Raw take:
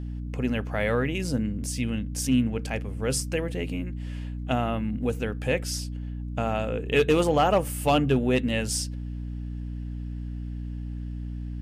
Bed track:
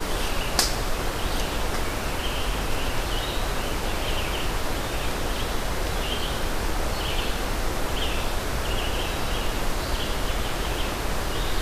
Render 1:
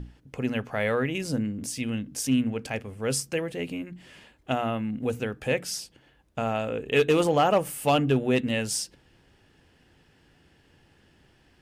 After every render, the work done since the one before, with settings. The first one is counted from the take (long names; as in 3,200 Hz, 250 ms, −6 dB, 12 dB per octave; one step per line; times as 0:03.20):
mains-hum notches 60/120/180/240/300 Hz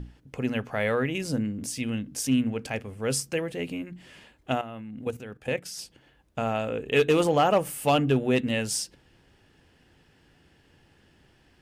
0:04.61–0:05.79: output level in coarse steps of 13 dB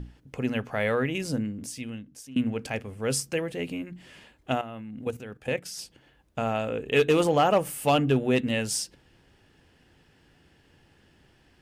0:01.24–0:02.36: fade out, to −23.5 dB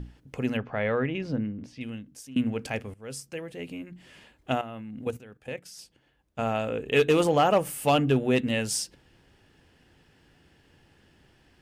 0:00.57–0:01.81: high-frequency loss of the air 260 metres
0:02.94–0:04.54: fade in, from −15 dB
0:05.18–0:06.39: clip gain −7.5 dB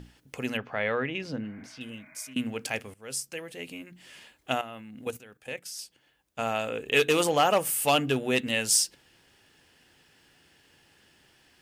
0:01.44–0:02.31: healed spectral selection 620–2,500 Hz both
spectral tilt +2.5 dB per octave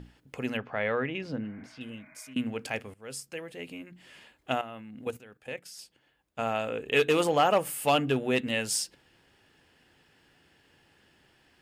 high-shelf EQ 3,600 Hz −8.5 dB
notch filter 5,900 Hz, Q 20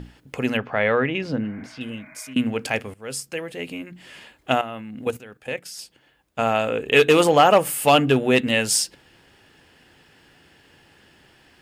level +9 dB
brickwall limiter −3 dBFS, peak gain reduction 1 dB